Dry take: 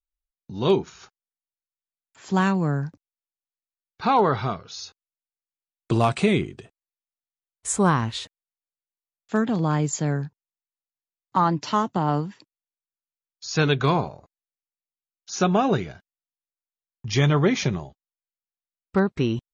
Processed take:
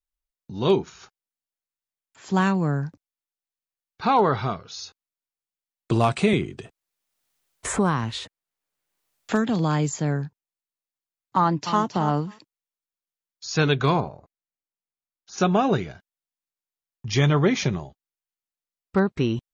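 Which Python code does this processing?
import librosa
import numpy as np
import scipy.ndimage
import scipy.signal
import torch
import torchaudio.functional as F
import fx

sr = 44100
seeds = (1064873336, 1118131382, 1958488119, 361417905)

y = fx.band_squash(x, sr, depth_pct=70, at=(6.33, 9.99))
y = fx.echo_throw(y, sr, start_s=11.39, length_s=0.45, ms=270, feedback_pct=10, wet_db=-9.5)
y = fx.high_shelf(y, sr, hz=2700.0, db=-11.0, at=(14.0, 15.38))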